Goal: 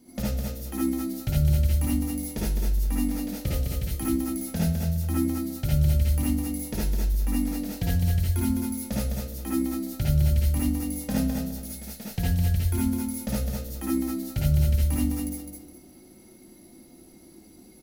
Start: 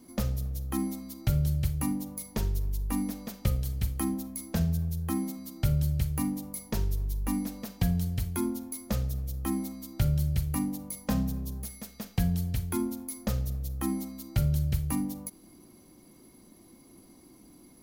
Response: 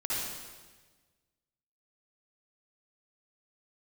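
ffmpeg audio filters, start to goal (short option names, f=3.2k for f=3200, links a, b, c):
-filter_complex "[0:a]equalizer=f=1.1k:w=3.7:g=-10.5,aecho=1:1:208|416|624|832:0.562|0.152|0.041|0.0111[a];[1:a]atrim=start_sample=2205,atrim=end_sample=3969[b];[a][b]afir=irnorm=-1:irlink=0,volume=1dB"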